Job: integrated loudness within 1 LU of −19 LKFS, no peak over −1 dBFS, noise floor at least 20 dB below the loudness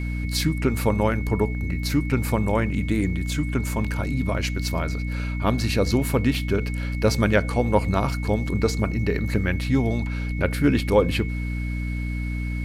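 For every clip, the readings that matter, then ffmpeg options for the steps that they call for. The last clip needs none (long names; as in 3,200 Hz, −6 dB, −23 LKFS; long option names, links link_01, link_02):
mains hum 60 Hz; hum harmonics up to 300 Hz; level of the hum −25 dBFS; interfering tone 2,200 Hz; level of the tone −37 dBFS; integrated loudness −24.0 LKFS; sample peak −6.0 dBFS; target loudness −19.0 LKFS
→ -af "bandreject=frequency=60:width_type=h:width=4,bandreject=frequency=120:width_type=h:width=4,bandreject=frequency=180:width_type=h:width=4,bandreject=frequency=240:width_type=h:width=4,bandreject=frequency=300:width_type=h:width=4"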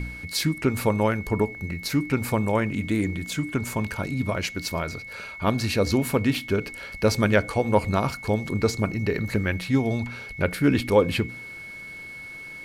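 mains hum none found; interfering tone 2,200 Hz; level of the tone −37 dBFS
→ -af "bandreject=frequency=2200:width=30"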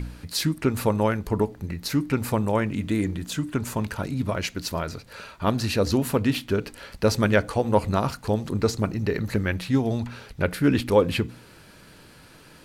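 interfering tone none found; integrated loudness −25.5 LKFS; sample peak −6.5 dBFS; target loudness −19.0 LKFS
→ -af "volume=6.5dB,alimiter=limit=-1dB:level=0:latency=1"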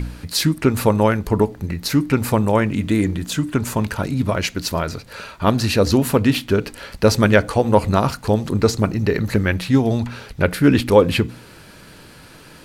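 integrated loudness −19.0 LKFS; sample peak −1.0 dBFS; background noise floor −44 dBFS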